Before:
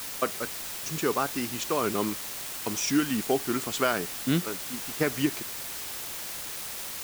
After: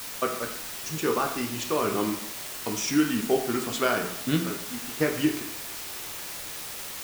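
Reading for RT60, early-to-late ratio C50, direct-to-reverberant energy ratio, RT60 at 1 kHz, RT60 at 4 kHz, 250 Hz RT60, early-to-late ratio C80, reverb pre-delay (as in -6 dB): 0.70 s, 7.5 dB, 2.0 dB, 0.70 s, 0.50 s, 0.60 s, 10.5 dB, 8 ms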